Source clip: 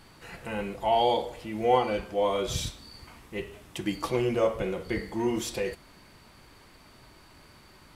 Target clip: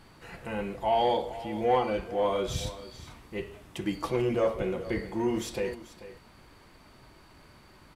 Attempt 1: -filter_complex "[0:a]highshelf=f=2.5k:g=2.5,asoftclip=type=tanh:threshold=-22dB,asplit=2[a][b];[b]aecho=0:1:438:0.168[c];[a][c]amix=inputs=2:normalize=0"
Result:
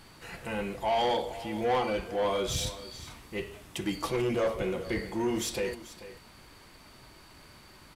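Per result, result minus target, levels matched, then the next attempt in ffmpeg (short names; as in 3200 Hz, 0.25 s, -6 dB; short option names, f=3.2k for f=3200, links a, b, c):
soft clip: distortion +9 dB; 4000 Hz band +4.5 dB
-filter_complex "[0:a]highshelf=f=2.5k:g=2.5,asoftclip=type=tanh:threshold=-15dB,asplit=2[a][b];[b]aecho=0:1:438:0.168[c];[a][c]amix=inputs=2:normalize=0"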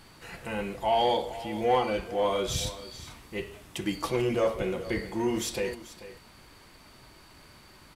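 4000 Hz band +4.0 dB
-filter_complex "[0:a]highshelf=f=2.5k:g=-5,asoftclip=type=tanh:threshold=-15dB,asplit=2[a][b];[b]aecho=0:1:438:0.168[c];[a][c]amix=inputs=2:normalize=0"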